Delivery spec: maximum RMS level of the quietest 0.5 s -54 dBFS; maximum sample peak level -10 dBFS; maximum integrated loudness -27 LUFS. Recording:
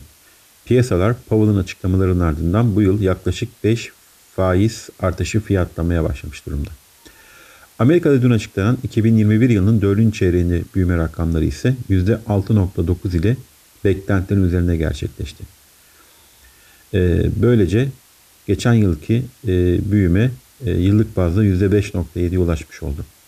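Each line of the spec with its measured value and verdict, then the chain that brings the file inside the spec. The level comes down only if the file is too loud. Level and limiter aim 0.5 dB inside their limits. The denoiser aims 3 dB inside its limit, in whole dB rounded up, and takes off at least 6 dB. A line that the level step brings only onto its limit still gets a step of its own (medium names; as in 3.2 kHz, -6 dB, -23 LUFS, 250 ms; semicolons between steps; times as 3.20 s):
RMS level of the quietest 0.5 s -50 dBFS: fail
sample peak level -4.5 dBFS: fail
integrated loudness -18.0 LUFS: fail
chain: trim -9.5 dB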